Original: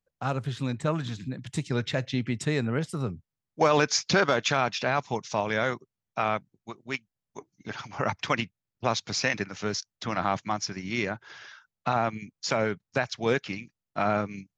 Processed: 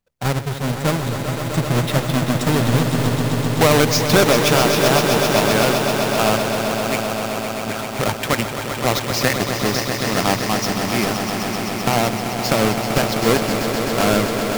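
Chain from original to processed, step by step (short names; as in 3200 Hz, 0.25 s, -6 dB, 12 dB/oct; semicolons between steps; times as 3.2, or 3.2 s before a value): half-waves squared off; swelling echo 0.129 s, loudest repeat 5, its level -9 dB; gain +3 dB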